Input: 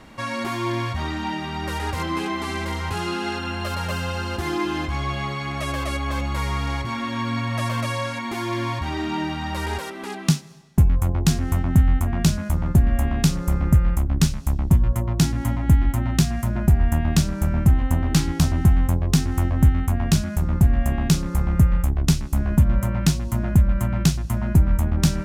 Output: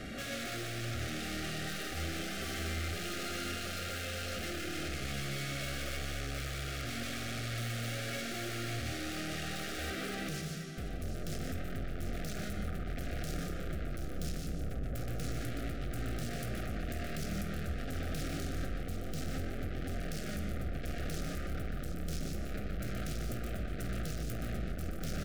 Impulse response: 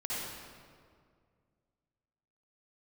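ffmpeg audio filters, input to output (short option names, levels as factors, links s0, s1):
-filter_complex "[0:a]asettb=1/sr,asplit=3[s0][s1][s2];[s0]atrim=end=16.264[s3];[s1]atrim=start=16.26:end=18.32,asetpts=PTS-STARTPTS,afade=t=in:d=0.004:c=qsin,afade=t=out:st=2.056:d=0.004:c=qsin,highpass=f=64:p=1[s4];[s2]atrim=start=18.316[s5];[s3][s4]acrossfade=d=0.004:c1=hsin:c2=qsin[s6];[s6][s5]acrossfade=d=0.004:c1=qsin:c2=hsin,alimiter=limit=0.133:level=0:latency=1:release=155,aeval=exprs='(tanh(70.8*val(0)+0.35)-tanh(0.35))/70.8':c=same,aeval=exprs='0.02*sin(PI/2*1.78*val(0)/0.02)':c=same,asuperstop=centerf=960:order=12:qfactor=2.3,aecho=1:1:50|122|147|175|227|737:0.224|0.398|0.398|0.266|0.141|0.316,volume=0.708"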